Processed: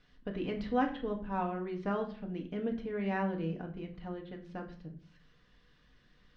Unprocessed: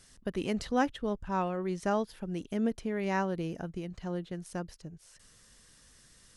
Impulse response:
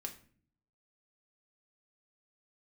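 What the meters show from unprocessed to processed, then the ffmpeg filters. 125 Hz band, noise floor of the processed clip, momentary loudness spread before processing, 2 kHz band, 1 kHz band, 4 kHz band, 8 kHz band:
-2.5 dB, -66 dBFS, 10 LU, -3.5 dB, -2.5 dB, -6.0 dB, under -25 dB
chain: -filter_complex "[0:a]lowpass=f=3.6k:w=0.5412,lowpass=f=3.6k:w=1.3066[a];[1:a]atrim=start_sample=2205,asetrate=39249,aresample=44100[b];[a][b]afir=irnorm=-1:irlink=0,volume=-1.5dB"

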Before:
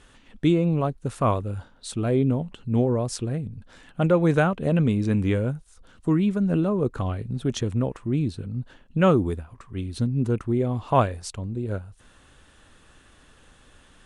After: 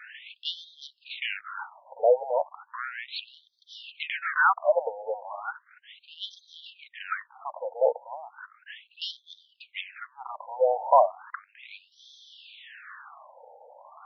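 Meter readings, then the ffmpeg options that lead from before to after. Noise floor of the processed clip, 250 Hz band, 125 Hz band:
-67 dBFS, under -40 dB, under -40 dB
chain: -filter_complex "[0:a]asplit=2[a][b];[b]highpass=f=720:p=1,volume=24dB,asoftclip=type=tanh:threshold=-6.5dB[c];[a][c]amix=inputs=2:normalize=0,lowpass=f=2.6k:p=1,volume=-6dB,afftfilt=real='re*between(b*sr/1024,640*pow(4500/640,0.5+0.5*sin(2*PI*0.35*pts/sr))/1.41,640*pow(4500/640,0.5+0.5*sin(2*PI*0.35*pts/sr))*1.41)':imag='im*between(b*sr/1024,640*pow(4500/640,0.5+0.5*sin(2*PI*0.35*pts/sr))/1.41,640*pow(4500/640,0.5+0.5*sin(2*PI*0.35*pts/sr))*1.41)':win_size=1024:overlap=0.75"

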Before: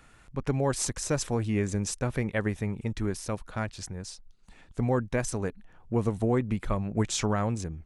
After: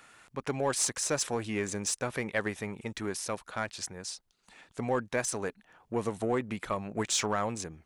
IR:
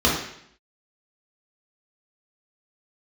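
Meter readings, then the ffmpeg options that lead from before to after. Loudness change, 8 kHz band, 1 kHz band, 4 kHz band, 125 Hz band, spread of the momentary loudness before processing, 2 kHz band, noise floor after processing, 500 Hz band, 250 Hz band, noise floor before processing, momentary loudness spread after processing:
-2.5 dB, +2.5 dB, +0.5 dB, +2.5 dB, -11.0 dB, 9 LU, +1.5 dB, -72 dBFS, -2.0 dB, -6.0 dB, -56 dBFS, 10 LU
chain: -filter_complex "[0:a]highpass=f=620:p=1,asplit=2[a][b];[b]asoftclip=type=tanh:threshold=-32dB,volume=-5dB[c];[a][c]amix=inputs=2:normalize=0"

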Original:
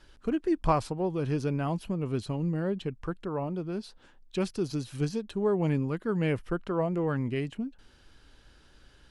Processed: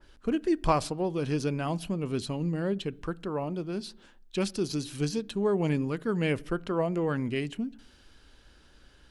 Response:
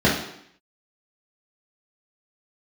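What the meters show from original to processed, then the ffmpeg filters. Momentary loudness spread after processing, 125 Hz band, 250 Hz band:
8 LU, -1.5 dB, +0.5 dB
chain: -filter_complex "[0:a]asplit=2[a][b];[b]highshelf=f=3.4k:g=-10.5[c];[1:a]atrim=start_sample=2205[d];[c][d]afir=irnorm=-1:irlink=0,volume=-39.5dB[e];[a][e]amix=inputs=2:normalize=0,adynamicequalizer=threshold=0.00316:dfrequency=2200:dqfactor=0.7:tfrequency=2200:tqfactor=0.7:attack=5:release=100:ratio=0.375:range=3.5:mode=boostabove:tftype=highshelf"

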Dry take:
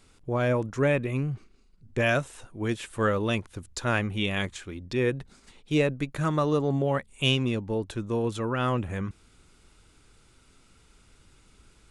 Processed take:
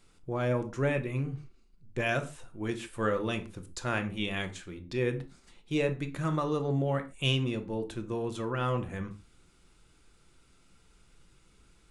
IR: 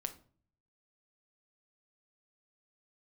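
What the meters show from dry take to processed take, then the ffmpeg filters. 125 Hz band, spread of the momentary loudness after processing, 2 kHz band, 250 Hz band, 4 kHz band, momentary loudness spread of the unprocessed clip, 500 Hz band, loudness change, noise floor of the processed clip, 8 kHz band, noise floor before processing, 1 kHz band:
-4.0 dB, 10 LU, -5.0 dB, -4.5 dB, -5.0 dB, 9 LU, -4.5 dB, -4.5 dB, -63 dBFS, -5.0 dB, -60 dBFS, -4.5 dB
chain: -filter_complex "[1:a]atrim=start_sample=2205,atrim=end_sample=6615[a];[0:a][a]afir=irnorm=-1:irlink=0,volume=-3.5dB"

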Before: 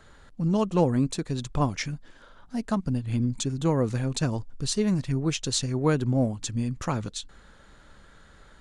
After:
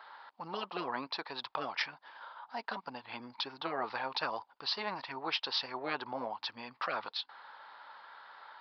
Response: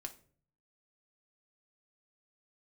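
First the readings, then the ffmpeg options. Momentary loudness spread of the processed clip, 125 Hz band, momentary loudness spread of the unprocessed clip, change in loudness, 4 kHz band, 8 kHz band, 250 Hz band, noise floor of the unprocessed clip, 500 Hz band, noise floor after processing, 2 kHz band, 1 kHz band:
17 LU, -31.5 dB, 9 LU, -10.5 dB, -1.5 dB, -28.0 dB, -21.0 dB, -54 dBFS, -12.5 dB, -71 dBFS, +0.5 dB, -2.5 dB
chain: -af "aresample=11025,aresample=44100,highpass=f=900:t=q:w=4.9,afftfilt=real='re*lt(hypot(re,im),0.158)':imag='im*lt(hypot(re,im),0.158)':win_size=1024:overlap=0.75"

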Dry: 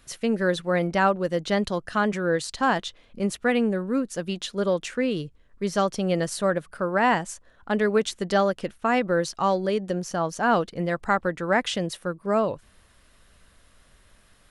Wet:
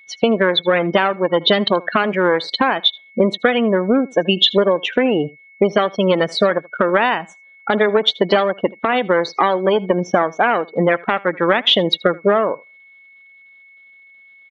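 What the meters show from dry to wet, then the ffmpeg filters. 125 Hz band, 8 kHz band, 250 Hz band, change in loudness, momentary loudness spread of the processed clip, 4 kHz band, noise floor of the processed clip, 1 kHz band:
+4.5 dB, n/a, +6.0 dB, +8.5 dB, 5 LU, +16.5 dB, -47 dBFS, +6.5 dB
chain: -af "aeval=exprs='if(lt(val(0),0),0.251*val(0),val(0))':c=same,highpass=250,afftdn=nr=35:nf=-37,adynamicequalizer=threshold=0.0141:dfrequency=530:dqfactor=1.6:tfrequency=530:tqfactor=1.6:attack=5:release=100:ratio=0.375:range=1.5:mode=cutabove:tftype=bell,acompressor=threshold=-39dB:ratio=16,aeval=exprs='val(0)+0.000251*sin(2*PI*2200*n/s)':c=same,lowpass=f=3.5k:t=q:w=6.5,highshelf=f=2.3k:g=-9.5,aecho=1:1:79:0.0708,alimiter=level_in=29dB:limit=-1dB:release=50:level=0:latency=1,volume=-1dB"

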